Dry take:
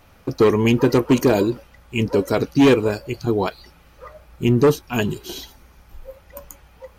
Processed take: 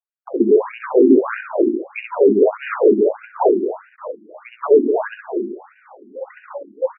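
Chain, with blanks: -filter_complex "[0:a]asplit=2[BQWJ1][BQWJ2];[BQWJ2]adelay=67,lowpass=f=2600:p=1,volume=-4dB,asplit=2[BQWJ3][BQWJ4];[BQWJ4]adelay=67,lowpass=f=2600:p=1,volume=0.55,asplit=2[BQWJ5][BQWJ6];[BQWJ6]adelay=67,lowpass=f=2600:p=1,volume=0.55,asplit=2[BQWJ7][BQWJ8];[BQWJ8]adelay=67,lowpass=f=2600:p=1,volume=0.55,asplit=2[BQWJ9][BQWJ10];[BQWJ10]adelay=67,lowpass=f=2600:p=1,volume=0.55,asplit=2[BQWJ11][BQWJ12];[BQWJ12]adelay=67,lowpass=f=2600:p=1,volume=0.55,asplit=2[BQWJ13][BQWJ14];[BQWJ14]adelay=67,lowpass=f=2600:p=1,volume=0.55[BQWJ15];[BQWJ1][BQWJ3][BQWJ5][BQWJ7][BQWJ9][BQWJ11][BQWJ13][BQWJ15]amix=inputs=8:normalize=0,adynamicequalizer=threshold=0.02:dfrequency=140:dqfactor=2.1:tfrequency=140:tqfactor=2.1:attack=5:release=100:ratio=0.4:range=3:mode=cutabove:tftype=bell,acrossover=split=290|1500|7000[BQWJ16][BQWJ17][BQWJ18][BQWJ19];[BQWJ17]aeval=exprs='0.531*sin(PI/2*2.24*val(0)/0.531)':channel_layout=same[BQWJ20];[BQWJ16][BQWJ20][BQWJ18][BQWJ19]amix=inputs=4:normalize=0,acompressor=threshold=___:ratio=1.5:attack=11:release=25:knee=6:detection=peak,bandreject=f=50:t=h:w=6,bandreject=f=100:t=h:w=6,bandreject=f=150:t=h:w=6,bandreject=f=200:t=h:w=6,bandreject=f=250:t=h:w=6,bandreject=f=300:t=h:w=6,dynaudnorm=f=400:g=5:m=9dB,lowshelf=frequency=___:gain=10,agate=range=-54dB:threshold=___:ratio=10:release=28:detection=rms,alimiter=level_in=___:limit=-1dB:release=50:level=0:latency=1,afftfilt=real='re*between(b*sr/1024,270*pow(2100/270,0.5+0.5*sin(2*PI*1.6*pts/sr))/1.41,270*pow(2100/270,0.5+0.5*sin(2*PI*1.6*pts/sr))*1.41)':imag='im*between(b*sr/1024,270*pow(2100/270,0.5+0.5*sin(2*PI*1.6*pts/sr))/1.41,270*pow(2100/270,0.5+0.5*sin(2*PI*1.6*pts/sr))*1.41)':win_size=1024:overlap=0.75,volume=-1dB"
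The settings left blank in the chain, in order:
-23dB, 490, -32dB, -0.5dB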